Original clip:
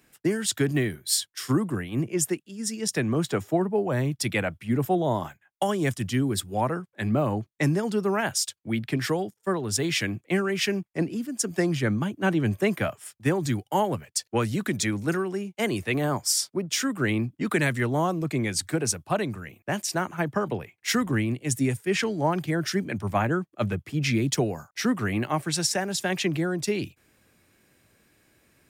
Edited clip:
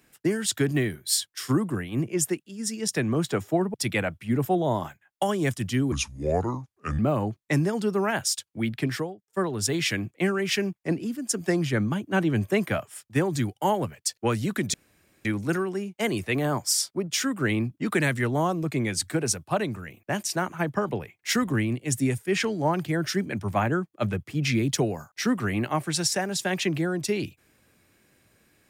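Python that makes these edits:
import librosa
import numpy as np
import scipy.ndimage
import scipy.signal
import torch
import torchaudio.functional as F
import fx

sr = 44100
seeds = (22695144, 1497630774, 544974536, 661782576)

y = fx.studio_fade_out(x, sr, start_s=8.95, length_s=0.43)
y = fx.edit(y, sr, fx.cut(start_s=3.74, length_s=0.4),
    fx.speed_span(start_s=6.32, length_s=0.77, speed=0.72),
    fx.insert_room_tone(at_s=14.84, length_s=0.51), tone=tone)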